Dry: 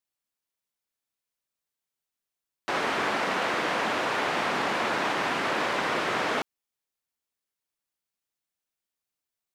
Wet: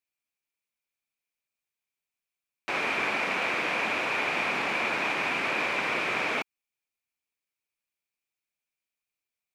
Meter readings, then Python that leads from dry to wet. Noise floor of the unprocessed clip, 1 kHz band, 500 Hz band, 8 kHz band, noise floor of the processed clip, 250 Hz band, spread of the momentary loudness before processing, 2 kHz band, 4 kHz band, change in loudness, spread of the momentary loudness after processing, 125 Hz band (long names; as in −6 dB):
below −85 dBFS, −3.5 dB, −4.0 dB, −4.0 dB, below −85 dBFS, −4.0 dB, 3 LU, +1.5 dB, −2.0 dB, 0.0 dB, 3 LU, −4.0 dB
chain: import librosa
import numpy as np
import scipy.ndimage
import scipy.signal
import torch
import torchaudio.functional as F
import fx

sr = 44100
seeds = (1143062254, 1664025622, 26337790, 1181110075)

y = fx.peak_eq(x, sr, hz=2400.0, db=14.0, octaves=0.29)
y = y * 10.0 ** (-4.0 / 20.0)